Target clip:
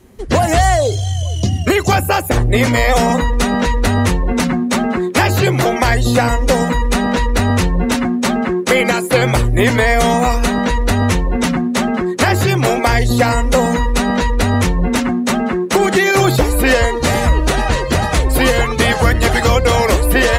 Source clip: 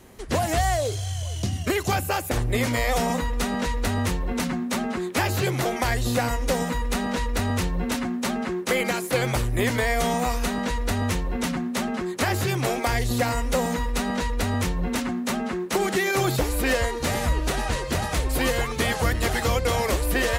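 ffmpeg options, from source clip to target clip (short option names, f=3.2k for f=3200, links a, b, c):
-af "acontrast=66,afftdn=nr=12:nf=-32,volume=4.5dB"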